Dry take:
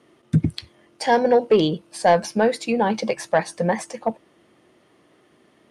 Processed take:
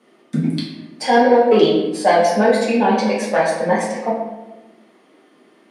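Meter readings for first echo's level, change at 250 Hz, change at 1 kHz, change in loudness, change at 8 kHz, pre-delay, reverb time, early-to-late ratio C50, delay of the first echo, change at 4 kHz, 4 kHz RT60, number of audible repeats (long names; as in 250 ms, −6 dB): no echo audible, +5.5 dB, +5.0 dB, +4.5 dB, +2.5 dB, 4 ms, 1.1 s, 2.5 dB, no echo audible, +4.5 dB, 0.70 s, no echo audible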